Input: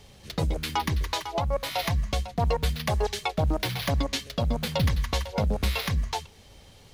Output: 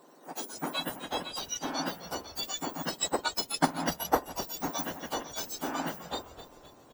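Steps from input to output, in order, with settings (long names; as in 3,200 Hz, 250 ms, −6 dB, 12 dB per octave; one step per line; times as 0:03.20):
frequency axis turned over on the octave scale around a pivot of 1,800 Hz
0:02.86–0:04.22: transient designer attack +9 dB, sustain −7 dB
echo with shifted repeats 258 ms, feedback 52%, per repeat −99 Hz, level −13.5 dB
level −3 dB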